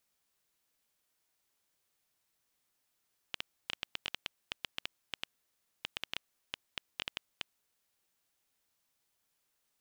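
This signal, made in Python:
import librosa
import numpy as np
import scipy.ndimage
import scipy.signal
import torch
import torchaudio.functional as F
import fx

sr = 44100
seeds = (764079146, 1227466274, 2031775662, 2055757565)

y = fx.geiger_clicks(sr, seeds[0], length_s=4.17, per_s=6.7, level_db=-17.0)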